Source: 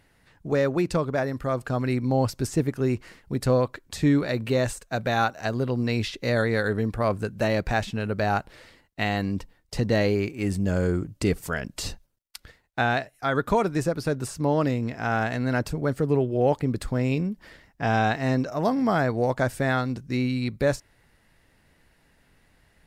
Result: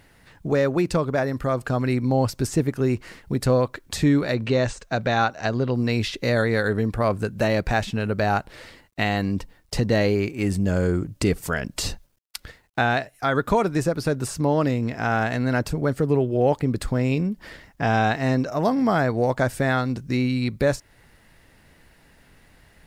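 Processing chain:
0:04.34–0:05.74: low-pass filter 6,700 Hz 24 dB per octave
in parallel at +2 dB: downward compressor, threshold −33 dBFS, peak gain reduction 15.5 dB
on the sum: bit reduction 12 bits

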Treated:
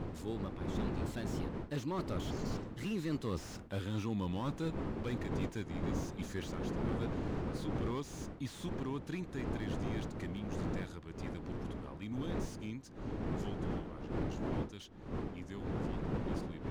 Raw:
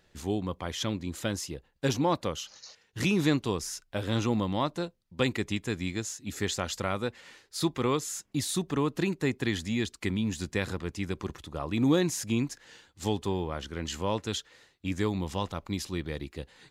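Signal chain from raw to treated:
source passing by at 0:03.50, 23 m/s, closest 7.7 metres
wind on the microphone 400 Hz −45 dBFS
parametric band 620 Hz −5 dB 1.1 octaves
reversed playback
downward compressor 16 to 1, threshold −46 dBFS, peak gain reduction 21.5 dB
reversed playback
slew-rate limiting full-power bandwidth 3.1 Hz
level +13.5 dB

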